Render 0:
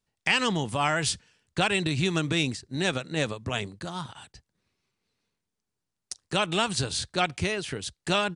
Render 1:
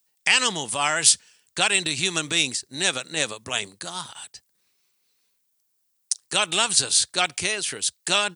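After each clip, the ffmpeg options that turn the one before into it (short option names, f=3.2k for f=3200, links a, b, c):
-af "aemphasis=mode=production:type=riaa,volume=1.5dB"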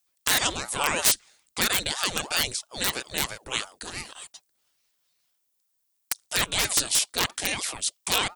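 -af "aeval=exprs='(mod(2.66*val(0)+1,2)-1)/2.66':c=same,aeval=exprs='val(0)*sin(2*PI*600*n/s+600*0.8/3*sin(2*PI*3*n/s))':c=same"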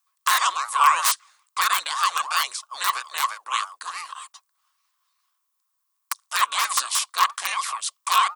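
-af "highpass=f=1.1k:t=q:w=11,volume=-1.5dB"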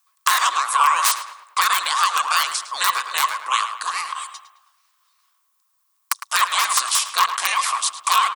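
-filter_complex "[0:a]acompressor=threshold=-24dB:ratio=2.5,asplit=2[a][b];[b]adelay=107,lowpass=f=2.9k:p=1,volume=-9dB,asplit=2[c][d];[d]adelay=107,lowpass=f=2.9k:p=1,volume=0.48,asplit=2[e][f];[f]adelay=107,lowpass=f=2.9k:p=1,volume=0.48,asplit=2[g][h];[h]adelay=107,lowpass=f=2.9k:p=1,volume=0.48,asplit=2[i][j];[j]adelay=107,lowpass=f=2.9k:p=1,volume=0.48[k];[a][c][e][g][i][k]amix=inputs=6:normalize=0,volume=7.5dB"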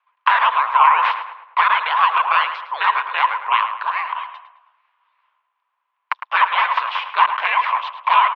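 -af "highpass=f=560:t=q:w=0.5412,highpass=f=560:t=q:w=1.307,lowpass=f=2.9k:t=q:w=0.5176,lowpass=f=2.9k:t=q:w=0.7071,lowpass=f=2.9k:t=q:w=1.932,afreqshift=-79,volume=4dB"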